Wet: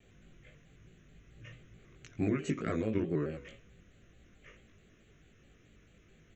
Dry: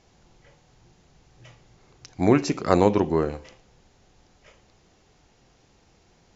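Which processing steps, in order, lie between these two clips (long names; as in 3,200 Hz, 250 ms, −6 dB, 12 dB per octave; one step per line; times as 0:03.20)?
brickwall limiter −9 dBFS, peak gain reduction 6 dB
downward compressor 4 to 1, threshold −27 dBFS, peak gain reduction 10.5 dB
phaser with its sweep stopped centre 2,100 Hz, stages 4
double-tracking delay 19 ms −2.5 dB
pitch modulation by a square or saw wave square 4.6 Hz, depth 100 cents
level −2 dB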